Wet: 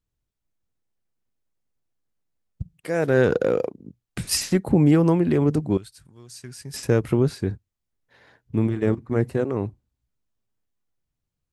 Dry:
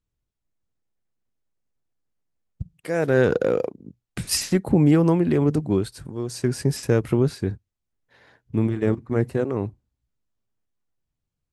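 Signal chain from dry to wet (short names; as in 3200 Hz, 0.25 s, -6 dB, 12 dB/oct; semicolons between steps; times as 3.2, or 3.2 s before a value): 5.77–6.74 passive tone stack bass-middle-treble 5-5-5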